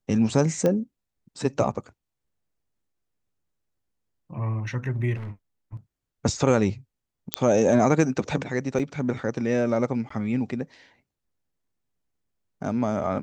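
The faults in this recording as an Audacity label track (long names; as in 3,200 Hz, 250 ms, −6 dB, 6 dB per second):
0.660000	0.660000	click −12 dBFS
5.150000	5.320000	clipping −31.5 dBFS
7.340000	7.340000	click −3 dBFS
8.790000	8.800000	drop-out 6.3 ms
10.090000	10.100000	drop-out 14 ms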